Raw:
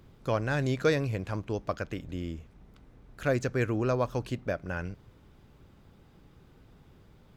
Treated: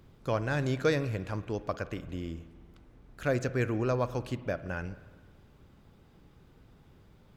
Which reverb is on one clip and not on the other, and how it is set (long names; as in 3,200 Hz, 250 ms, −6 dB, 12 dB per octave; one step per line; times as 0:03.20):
spring reverb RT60 1.5 s, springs 48/54 ms, chirp 60 ms, DRR 14 dB
level −1.5 dB